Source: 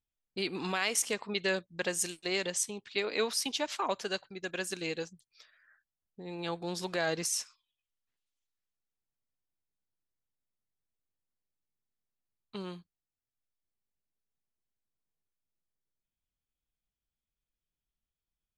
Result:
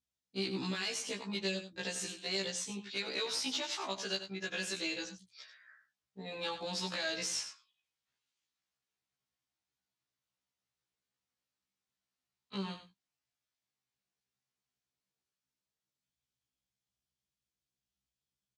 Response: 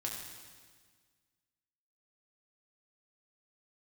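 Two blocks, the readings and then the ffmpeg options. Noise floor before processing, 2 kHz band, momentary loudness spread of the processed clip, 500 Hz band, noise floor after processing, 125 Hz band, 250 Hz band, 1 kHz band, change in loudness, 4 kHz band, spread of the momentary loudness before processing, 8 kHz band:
under -85 dBFS, -4.0 dB, 11 LU, -6.5 dB, under -85 dBFS, -1.5 dB, -2.0 dB, -6.5 dB, -3.5 dB, +0.5 dB, 14 LU, -6.0 dB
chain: -filter_complex "[0:a]bass=f=250:g=6,treble=f=4000:g=13,acrossover=split=610|3600[s0][s1][s2];[s1]dynaudnorm=f=340:g=21:m=2.24[s3];[s2]alimiter=limit=0.188:level=0:latency=1:release=297[s4];[s0][s3][s4]amix=inputs=3:normalize=0,acrossover=split=130|3000[s5][s6][s7];[s6]acompressor=threshold=0.0224:ratio=6[s8];[s5][s8][s7]amix=inputs=3:normalize=0,asoftclip=type=tanh:threshold=0.0596,highpass=100,lowpass=5200,asplit=2[s9][s10];[s10]aecho=0:1:93:0.299[s11];[s9][s11]amix=inputs=2:normalize=0,afftfilt=real='re*1.73*eq(mod(b,3),0)':imag='im*1.73*eq(mod(b,3),0)':win_size=2048:overlap=0.75"

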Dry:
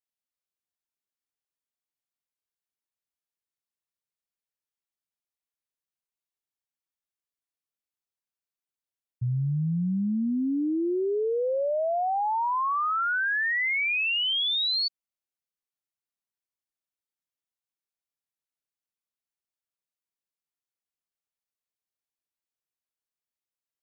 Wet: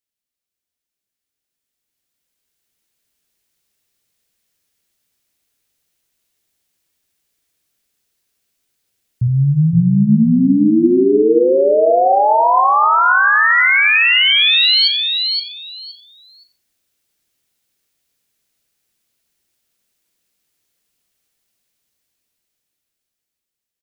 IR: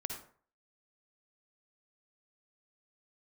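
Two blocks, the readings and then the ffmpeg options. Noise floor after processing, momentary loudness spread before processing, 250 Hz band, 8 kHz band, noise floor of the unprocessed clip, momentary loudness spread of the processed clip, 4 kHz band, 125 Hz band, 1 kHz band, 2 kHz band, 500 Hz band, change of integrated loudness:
-84 dBFS, 4 LU, +14.5 dB, no reading, under -85 dBFS, 9 LU, +14.0 dB, +14.5 dB, +14.5 dB, +14.5 dB, +14.5 dB, +14.0 dB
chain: -filter_complex "[0:a]equalizer=f=1000:w=1.1:g=-8,alimiter=level_in=2.66:limit=0.0631:level=0:latency=1:release=152,volume=0.376,dynaudnorm=f=340:g=13:m=5.62,aecho=1:1:519|1038|1557:0.562|0.112|0.0225,asplit=2[s0][s1];[1:a]atrim=start_sample=2205[s2];[s1][s2]afir=irnorm=-1:irlink=0,volume=1.12[s3];[s0][s3]amix=inputs=2:normalize=0,volume=1.19"

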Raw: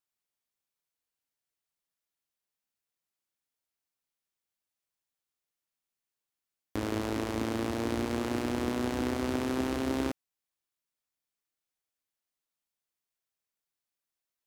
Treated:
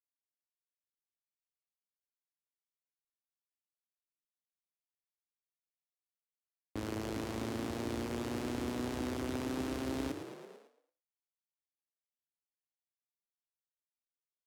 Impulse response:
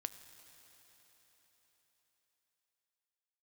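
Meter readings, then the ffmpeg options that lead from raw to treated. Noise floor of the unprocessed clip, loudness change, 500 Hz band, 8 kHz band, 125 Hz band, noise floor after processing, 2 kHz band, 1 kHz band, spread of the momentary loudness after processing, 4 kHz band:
under -85 dBFS, -6.0 dB, -6.0 dB, -4.0 dB, -4.5 dB, under -85 dBFS, -6.5 dB, -6.5 dB, 8 LU, -5.0 dB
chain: -filter_complex "[0:a]asplit=9[s0][s1][s2][s3][s4][s5][s6][s7][s8];[s1]adelay=111,afreqshift=30,volume=0.355[s9];[s2]adelay=222,afreqshift=60,volume=0.226[s10];[s3]adelay=333,afreqshift=90,volume=0.145[s11];[s4]adelay=444,afreqshift=120,volume=0.0933[s12];[s5]adelay=555,afreqshift=150,volume=0.0596[s13];[s6]adelay=666,afreqshift=180,volume=0.038[s14];[s7]adelay=777,afreqshift=210,volume=0.0243[s15];[s8]adelay=888,afreqshift=240,volume=0.0157[s16];[s0][s9][s10][s11][s12][s13][s14][s15][s16]amix=inputs=9:normalize=0,acrossover=split=240|3000[s17][s18][s19];[s18]acompressor=threshold=0.0141:ratio=1.5[s20];[s17][s20][s19]amix=inputs=3:normalize=0,agate=range=0.0224:threshold=0.00398:ratio=3:detection=peak,volume=0.562"

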